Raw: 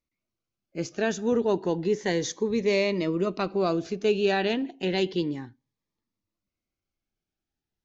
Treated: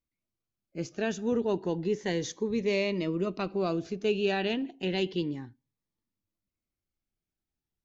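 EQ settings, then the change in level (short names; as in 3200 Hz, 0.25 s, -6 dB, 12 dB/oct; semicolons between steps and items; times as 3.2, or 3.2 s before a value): low shelf 270 Hz +5.5 dB; dynamic EQ 2800 Hz, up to +5 dB, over -48 dBFS, Q 3.2; -6.0 dB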